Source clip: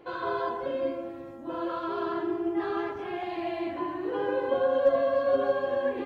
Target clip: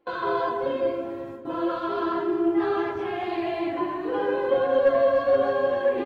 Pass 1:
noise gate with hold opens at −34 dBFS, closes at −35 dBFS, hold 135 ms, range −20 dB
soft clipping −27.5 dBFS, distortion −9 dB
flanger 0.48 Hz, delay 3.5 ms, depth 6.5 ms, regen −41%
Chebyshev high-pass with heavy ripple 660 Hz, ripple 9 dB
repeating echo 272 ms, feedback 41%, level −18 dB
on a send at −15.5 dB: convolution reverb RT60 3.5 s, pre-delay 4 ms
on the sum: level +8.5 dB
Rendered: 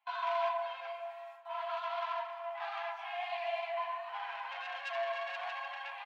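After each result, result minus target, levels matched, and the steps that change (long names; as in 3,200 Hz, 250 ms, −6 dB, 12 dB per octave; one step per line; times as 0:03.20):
soft clipping: distortion +12 dB; 500 Hz band −4.0 dB
change: soft clipping −16.5 dBFS, distortion −21 dB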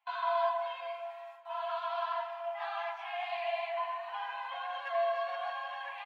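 500 Hz band −3.5 dB
remove: Chebyshev high-pass with heavy ripple 660 Hz, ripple 9 dB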